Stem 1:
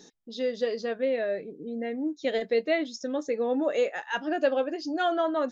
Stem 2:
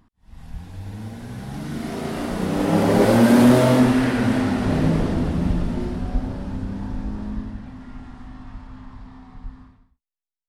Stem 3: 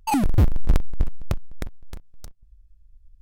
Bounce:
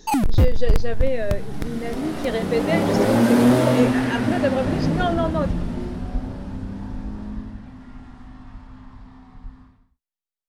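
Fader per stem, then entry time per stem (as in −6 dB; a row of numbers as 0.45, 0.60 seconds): +2.5, −2.5, +1.0 decibels; 0.00, 0.00, 0.00 seconds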